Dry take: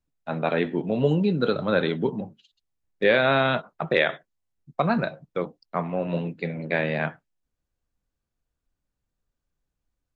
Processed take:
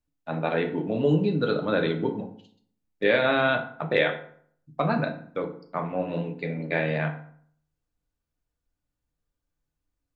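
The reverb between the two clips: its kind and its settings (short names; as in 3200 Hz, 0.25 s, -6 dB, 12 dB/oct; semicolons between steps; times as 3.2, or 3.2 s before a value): FDN reverb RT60 0.58 s, low-frequency decay 1.2×, high-frequency decay 0.65×, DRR 4 dB; gain -3 dB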